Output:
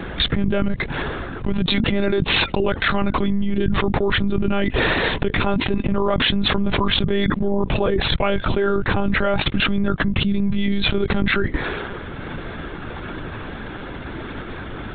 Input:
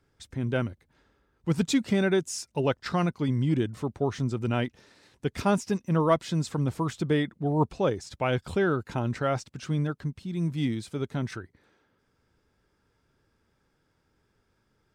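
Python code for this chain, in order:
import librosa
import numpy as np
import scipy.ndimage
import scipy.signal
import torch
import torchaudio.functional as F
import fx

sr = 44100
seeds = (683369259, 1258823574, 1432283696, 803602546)

y = fx.lpc_monotone(x, sr, seeds[0], pitch_hz=200.0, order=16)
y = fx.env_flatten(y, sr, amount_pct=100)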